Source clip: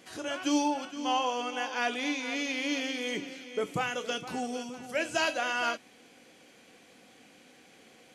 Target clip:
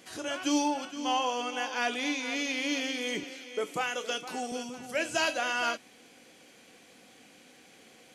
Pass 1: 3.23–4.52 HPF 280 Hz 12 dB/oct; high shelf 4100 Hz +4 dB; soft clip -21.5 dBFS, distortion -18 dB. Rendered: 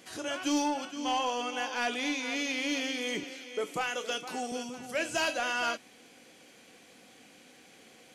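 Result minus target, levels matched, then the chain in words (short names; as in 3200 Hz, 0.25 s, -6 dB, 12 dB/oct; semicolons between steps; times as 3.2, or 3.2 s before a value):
soft clip: distortion +12 dB
3.23–4.52 HPF 280 Hz 12 dB/oct; high shelf 4100 Hz +4 dB; soft clip -14 dBFS, distortion -30 dB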